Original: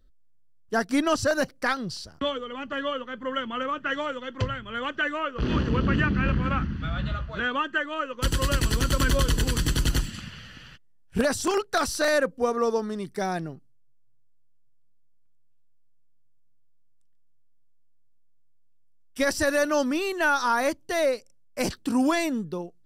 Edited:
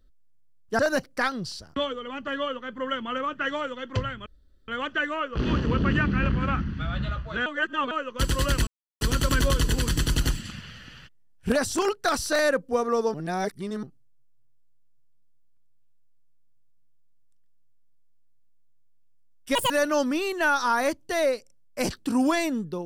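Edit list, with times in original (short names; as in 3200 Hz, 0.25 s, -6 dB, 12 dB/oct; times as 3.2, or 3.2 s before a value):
0.79–1.24 cut
4.71 insert room tone 0.42 s
7.49–7.94 reverse
8.7 insert silence 0.34 s
12.83–13.52 reverse
19.24–19.5 speed 172%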